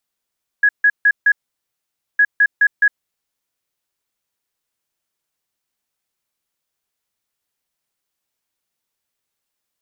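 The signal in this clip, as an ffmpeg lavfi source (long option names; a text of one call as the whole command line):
ffmpeg -f lavfi -i "aevalsrc='0.376*sin(2*PI*1670*t)*clip(min(mod(mod(t,1.56),0.21),0.06-mod(mod(t,1.56),0.21))/0.005,0,1)*lt(mod(t,1.56),0.84)':duration=3.12:sample_rate=44100" out.wav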